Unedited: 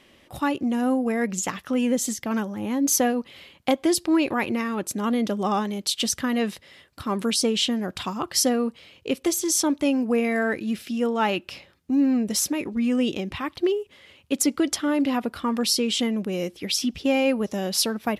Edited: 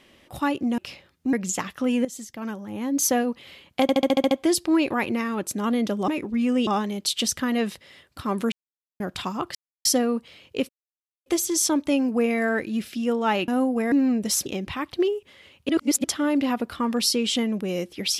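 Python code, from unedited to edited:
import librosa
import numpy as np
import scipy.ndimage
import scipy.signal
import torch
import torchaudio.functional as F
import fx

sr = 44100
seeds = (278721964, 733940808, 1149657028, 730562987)

y = fx.edit(x, sr, fx.swap(start_s=0.78, length_s=0.44, other_s=11.42, other_length_s=0.55),
    fx.fade_in_from(start_s=1.94, length_s=1.2, floor_db=-13.5),
    fx.stutter(start_s=3.71, slice_s=0.07, count=8),
    fx.silence(start_s=7.33, length_s=0.48),
    fx.insert_silence(at_s=8.36, length_s=0.3),
    fx.insert_silence(at_s=9.2, length_s=0.57),
    fx.move(start_s=12.51, length_s=0.59, to_s=5.48),
    fx.reverse_span(start_s=14.33, length_s=0.35), tone=tone)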